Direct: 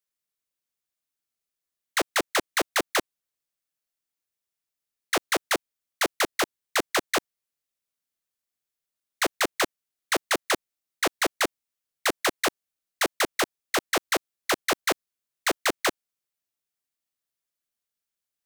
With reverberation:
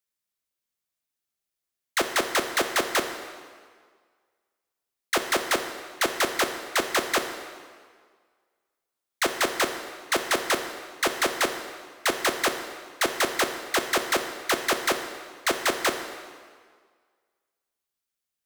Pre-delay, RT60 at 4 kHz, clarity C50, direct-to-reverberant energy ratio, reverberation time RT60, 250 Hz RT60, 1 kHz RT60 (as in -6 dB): 5 ms, 1.5 s, 7.5 dB, 5.5 dB, 1.8 s, 1.7 s, 1.8 s